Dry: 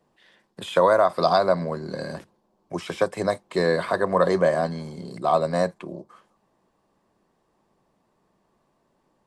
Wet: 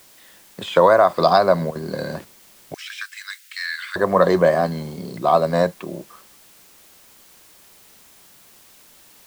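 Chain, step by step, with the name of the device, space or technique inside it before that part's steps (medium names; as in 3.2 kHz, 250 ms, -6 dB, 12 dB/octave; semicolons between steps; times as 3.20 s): worn cassette (low-pass 6.7 kHz; wow and flutter; level dips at 1.71 s, 43 ms -13 dB; white noise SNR 29 dB); 2.74–3.96 s: steep high-pass 1.5 kHz 48 dB/octave; trim +4.5 dB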